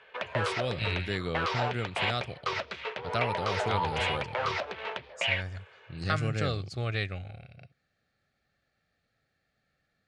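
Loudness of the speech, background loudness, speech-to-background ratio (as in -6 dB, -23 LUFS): -34.0 LUFS, -32.5 LUFS, -1.5 dB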